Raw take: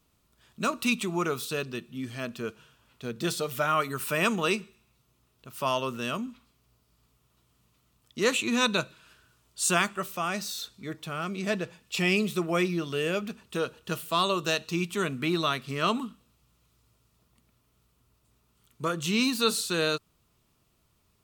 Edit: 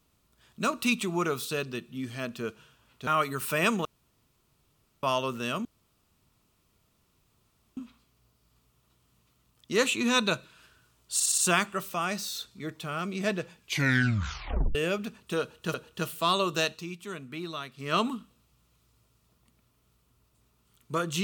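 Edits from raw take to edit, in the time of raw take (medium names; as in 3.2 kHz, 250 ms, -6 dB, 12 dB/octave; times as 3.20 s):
3.07–3.66 s: delete
4.44–5.62 s: room tone
6.24 s: insert room tone 2.12 s
9.61 s: stutter 0.06 s, 5 plays
11.80 s: tape stop 1.18 s
13.64–13.97 s: loop, 2 plays
14.59–15.84 s: dip -10 dB, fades 0.16 s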